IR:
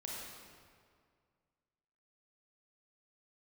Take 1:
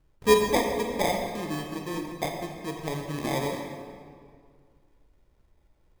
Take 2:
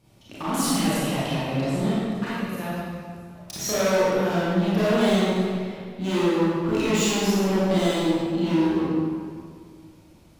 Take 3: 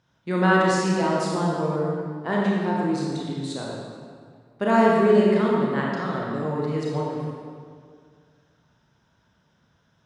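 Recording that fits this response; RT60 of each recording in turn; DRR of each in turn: 3; 2.1, 2.1, 2.1 s; 2.5, -10.0, -4.0 dB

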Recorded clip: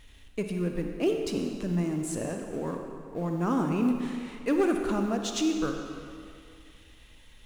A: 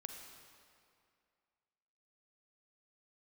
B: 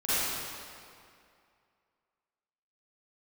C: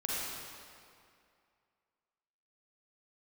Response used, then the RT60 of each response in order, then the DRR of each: A; 2.3, 2.4, 2.4 s; 3.5, -15.5, -6.5 dB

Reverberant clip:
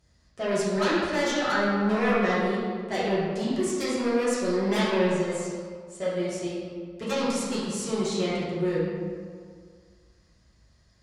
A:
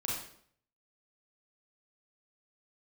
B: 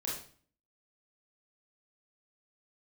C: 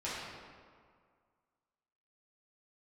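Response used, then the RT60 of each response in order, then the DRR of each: C; 0.60, 0.45, 2.0 s; -4.5, -5.0, -10.5 dB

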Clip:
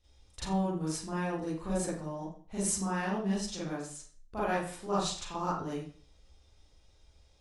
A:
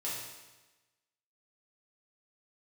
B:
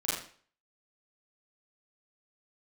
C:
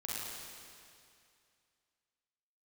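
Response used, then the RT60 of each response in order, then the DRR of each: B; 1.1, 0.45, 2.4 s; -8.0, -9.5, -7.0 dB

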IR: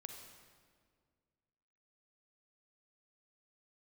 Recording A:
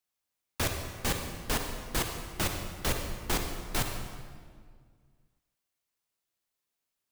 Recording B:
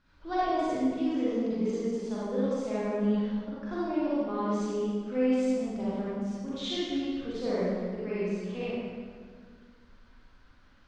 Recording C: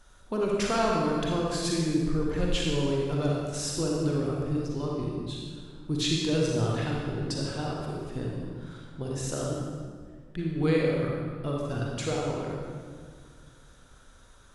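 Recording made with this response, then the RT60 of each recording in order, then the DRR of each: A; 1.9, 1.9, 1.9 s; 4.0, -10.5, -3.0 dB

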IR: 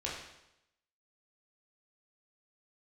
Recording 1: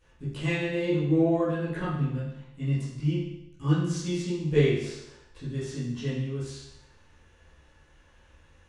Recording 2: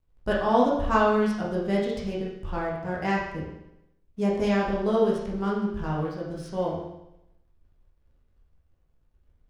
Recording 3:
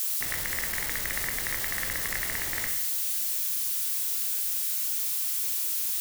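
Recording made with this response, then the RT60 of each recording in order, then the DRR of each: 2; 0.85, 0.85, 0.85 s; -13.0, -5.0, 3.0 dB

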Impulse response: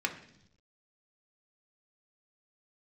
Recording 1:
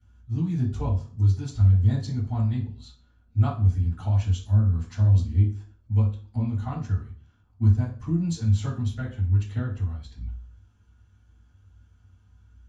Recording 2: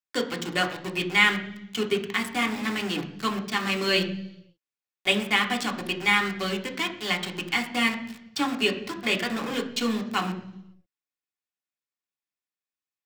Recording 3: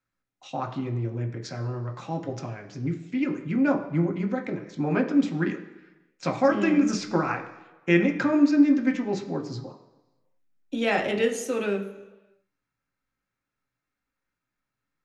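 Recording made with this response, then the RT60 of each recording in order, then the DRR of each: 2; 0.40 s, 0.80 s, not exponential; -11.5, 2.0, 2.5 dB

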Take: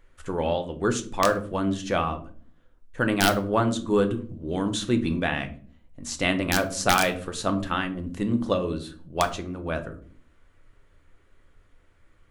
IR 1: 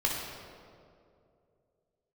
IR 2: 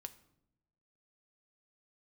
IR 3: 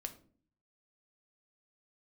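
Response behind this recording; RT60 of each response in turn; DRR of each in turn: 3; 2.5 s, not exponential, 0.45 s; -2.5, 9.5, 6.5 dB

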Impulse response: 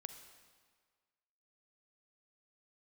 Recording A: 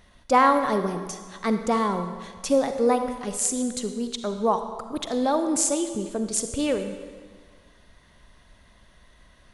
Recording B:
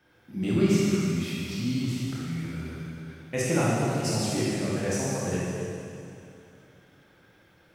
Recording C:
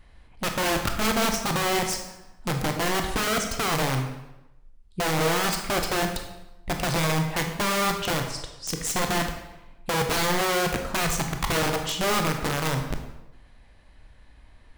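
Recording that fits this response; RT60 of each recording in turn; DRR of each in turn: A; 1.7, 2.7, 0.95 s; 8.0, -7.5, 4.0 dB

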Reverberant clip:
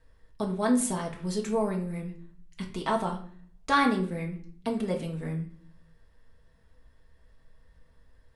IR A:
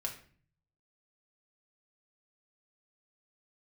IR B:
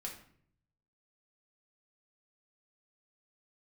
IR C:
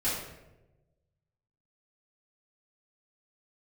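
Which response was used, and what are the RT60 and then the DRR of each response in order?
A; 0.45, 0.60, 1.0 s; -0.5, -1.0, -12.0 dB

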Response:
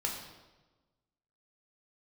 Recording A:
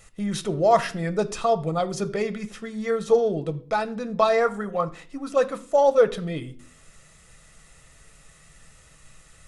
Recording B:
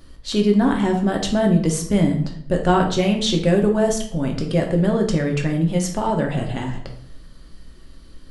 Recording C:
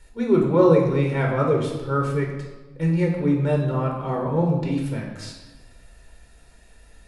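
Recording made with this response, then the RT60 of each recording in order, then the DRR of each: C; 0.45, 0.65, 1.2 s; 9.0, 1.5, -0.5 dB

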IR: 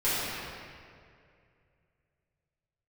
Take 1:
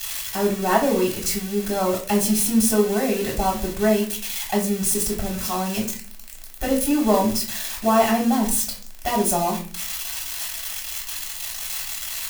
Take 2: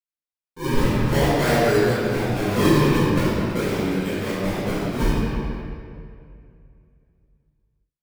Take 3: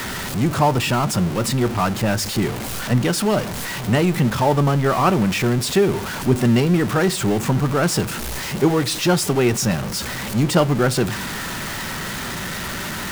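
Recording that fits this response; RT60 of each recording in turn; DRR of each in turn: 2; 0.40 s, 2.3 s, not exponential; -3.5, -14.5, 13.5 dB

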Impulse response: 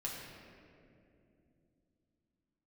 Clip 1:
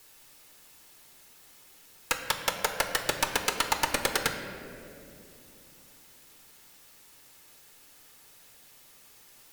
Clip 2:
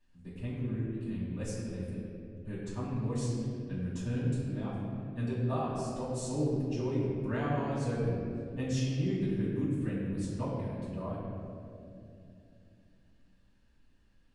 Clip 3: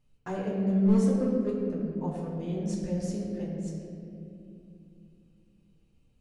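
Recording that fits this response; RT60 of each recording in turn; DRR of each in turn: 3; 2.7, 2.7, 2.7 s; 4.0, -12.0, -4.5 dB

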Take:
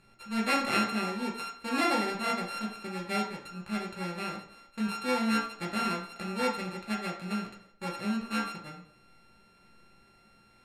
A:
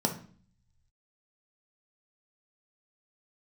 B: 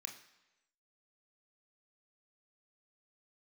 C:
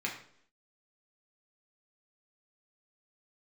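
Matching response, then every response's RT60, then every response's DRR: C; 0.45, 1.0, 0.65 s; 2.5, 3.0, -2.5 dB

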